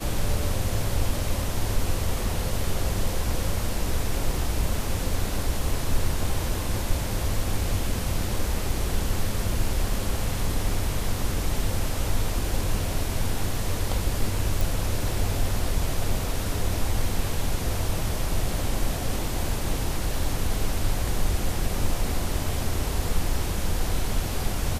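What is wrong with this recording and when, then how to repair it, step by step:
14.61 pop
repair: de-click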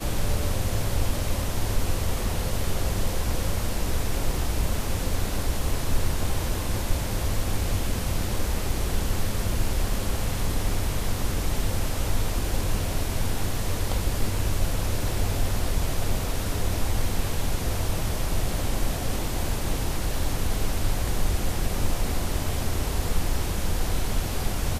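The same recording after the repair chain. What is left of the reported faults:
none

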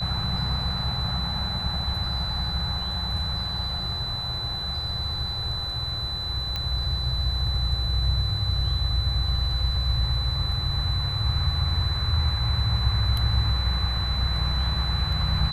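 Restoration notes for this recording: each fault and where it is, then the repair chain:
tone 4000 Hz -29 dBFS
6.56 pop -15 dBFS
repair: de-click; notch 4000 Hz, Q 30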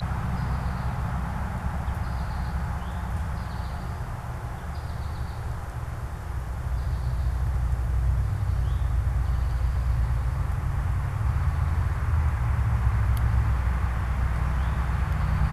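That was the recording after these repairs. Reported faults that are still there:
none

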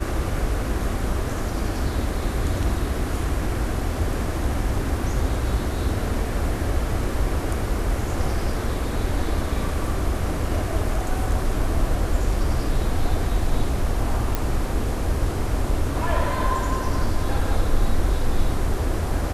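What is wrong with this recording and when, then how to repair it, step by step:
14.35 pop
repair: de-click

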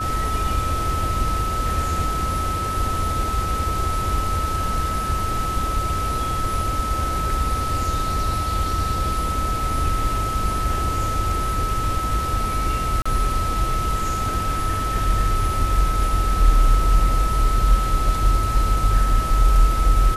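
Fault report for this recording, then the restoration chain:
tone 1300 Hz -24 dBFS
13.02–13.05 gap 35 ms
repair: notch 1300 Hz, Q 30; interpolate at 13.02, 35 ms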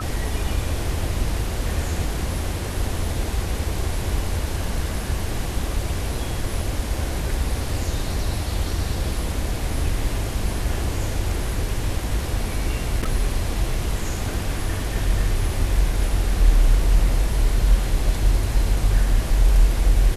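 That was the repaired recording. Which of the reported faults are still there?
none

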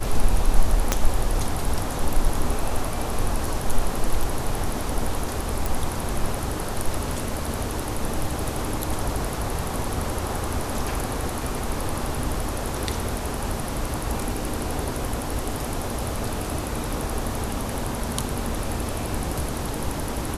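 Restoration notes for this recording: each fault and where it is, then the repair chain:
0.92 pop -4 dBFS
5.66 pop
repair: de-click

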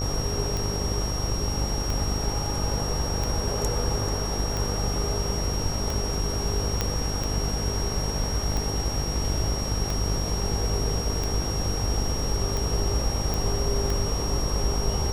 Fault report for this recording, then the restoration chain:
buzz 50 Hz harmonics 26 -30 dBFS
tick 45 rpm
tone 5600 Hz -32 dBFS
6.81 pop -9 dBFS
13.34 pop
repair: de-click; notch 5600 Hz, Q 30; de-hum 50 Hz, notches 26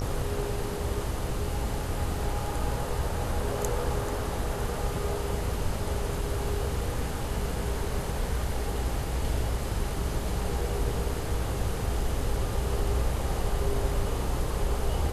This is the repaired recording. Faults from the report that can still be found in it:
none

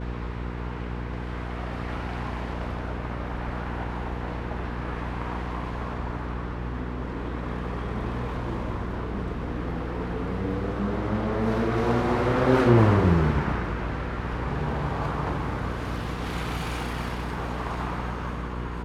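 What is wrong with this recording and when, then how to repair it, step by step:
hum 60 Hz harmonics 8 -33 dBFS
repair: de-hum 60 Hz, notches 8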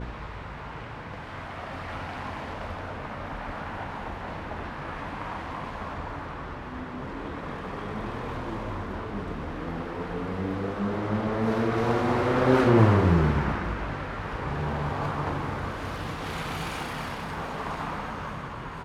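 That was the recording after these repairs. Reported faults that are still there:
none

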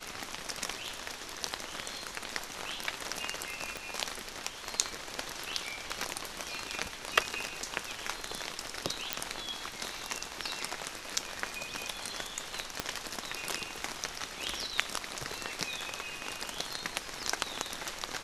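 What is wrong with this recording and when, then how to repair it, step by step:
3.77 pop
9.13 pop -9 dBFS
12.8 pop -14 dBFS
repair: de-click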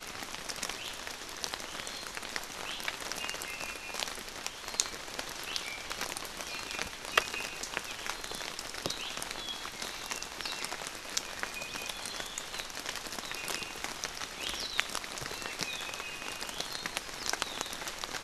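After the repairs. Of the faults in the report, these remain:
3.77 pop
12.8 pop

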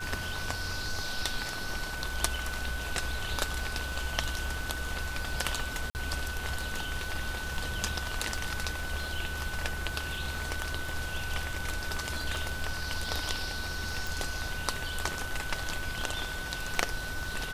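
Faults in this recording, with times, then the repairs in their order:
crackle 24/s -38 dBFS
tone 1500 Hz -38 dBFS
5.9–5.95 gap 49 ms
14.07 pop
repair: de-click; notch 1500 Hz, Q 30; interpolate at 5.9, 49 ms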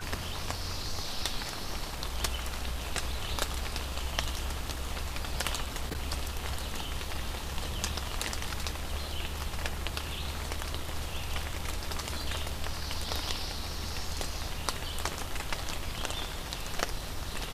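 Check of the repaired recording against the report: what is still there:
none

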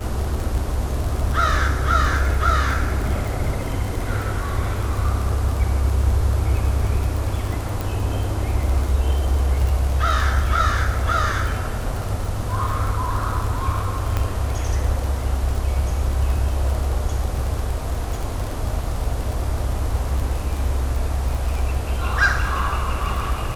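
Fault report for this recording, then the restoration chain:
crackle 32/s -24 dBFS
7.81 pop
14.17 pop -9 dBFS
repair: de-click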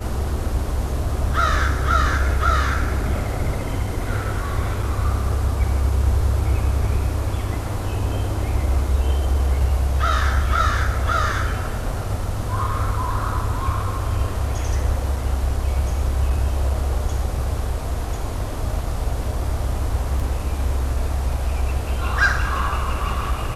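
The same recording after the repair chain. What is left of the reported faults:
none

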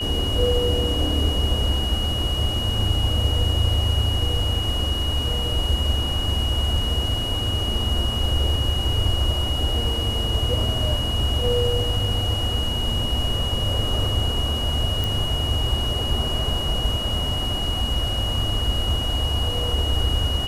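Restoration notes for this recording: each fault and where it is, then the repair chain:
tone 2900 Hz -26 dBFS
15.04 pop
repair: de-click; notch 2900 Hz, Q 30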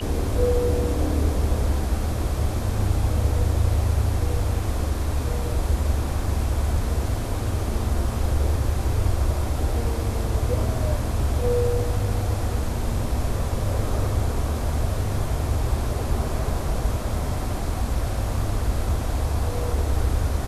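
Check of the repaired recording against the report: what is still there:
none

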